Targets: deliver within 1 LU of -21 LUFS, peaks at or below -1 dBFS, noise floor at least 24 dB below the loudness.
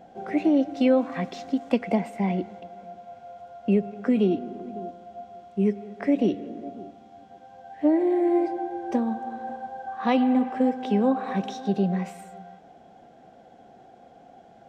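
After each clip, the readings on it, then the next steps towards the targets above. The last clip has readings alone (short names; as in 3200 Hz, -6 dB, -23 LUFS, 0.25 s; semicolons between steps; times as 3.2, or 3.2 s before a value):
loudness -25.5 LUFS; peak -9.5 dBFS; loudness target -21.0 LUFS
-> gain +4.5 dB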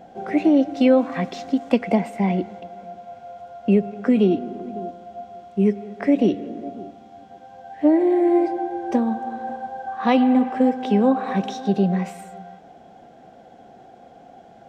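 loudness -21.0 LUFS; peak -5.0 dBFS; noise floor -48 dBFS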